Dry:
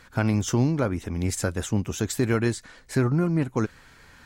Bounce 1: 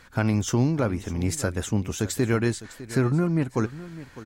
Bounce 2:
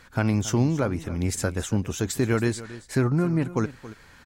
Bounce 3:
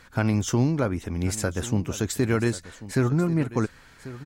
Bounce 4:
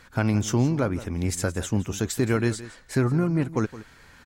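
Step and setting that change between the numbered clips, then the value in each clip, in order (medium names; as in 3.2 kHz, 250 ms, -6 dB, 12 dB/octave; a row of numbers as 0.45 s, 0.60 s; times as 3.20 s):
delay, time: 605 ms, 276 ms, 1090 ms, 168 ms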